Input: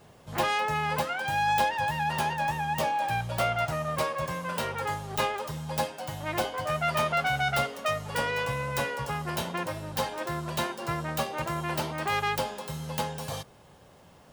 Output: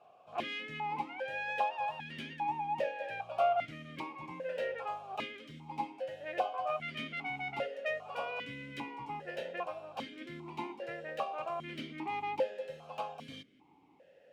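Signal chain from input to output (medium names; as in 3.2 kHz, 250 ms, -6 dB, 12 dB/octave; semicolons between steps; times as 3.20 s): stepped vowel filter 2.5 Hz; trim +4 dB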